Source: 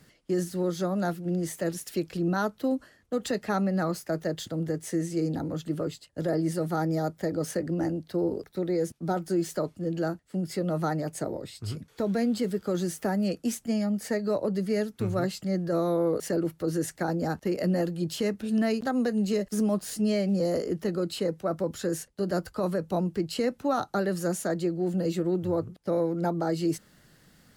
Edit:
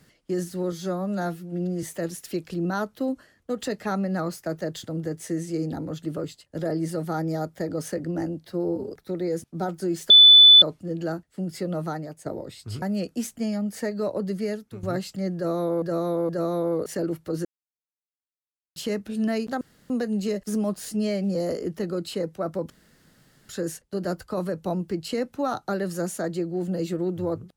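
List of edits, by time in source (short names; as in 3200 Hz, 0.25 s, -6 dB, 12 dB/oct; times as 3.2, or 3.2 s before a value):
0.72–1.46 stretch 1.5×
8.09–8.39 stretch 1.5×
9.58 add tone 3490 Hz -7.5 dBFS 0.52 s
10.7–11.22 fade out, to -11.5 dB
11.78–13.1 cut
14.68–15.11 fade out, to -14 dB
15.63–16.1 loop, 3 plays
16.79–18.1 mute
18.95 insert room tone 0.29 s
21.75 insert room tone 0.79 s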